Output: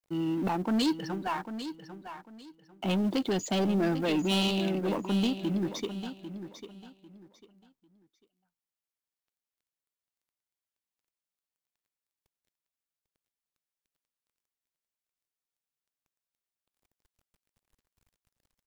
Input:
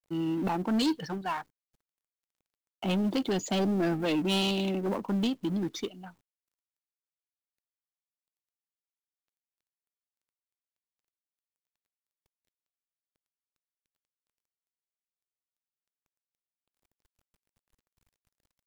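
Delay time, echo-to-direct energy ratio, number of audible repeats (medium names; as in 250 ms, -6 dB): 797 ms, -10.5 dB, 2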